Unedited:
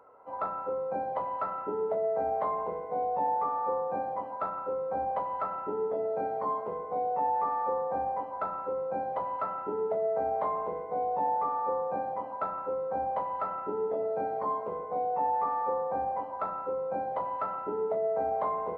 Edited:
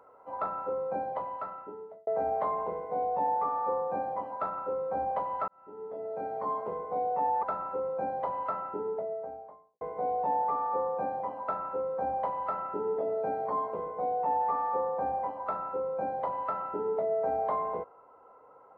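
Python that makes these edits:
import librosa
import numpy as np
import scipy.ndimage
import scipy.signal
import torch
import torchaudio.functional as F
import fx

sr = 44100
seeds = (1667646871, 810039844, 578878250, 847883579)

y = fx.studio_fade_out(x, sr, start_s=9.35, length_s=1.39)
y = fx.edit(y, sr, fx.fade_out_span(start_s=0.93, length_s=1.14),
    fx.fade_in_span(start_s=5.48, length_s=1.17),
    fx.cut(start_s=7.43, length_s=0.93), tone=tone)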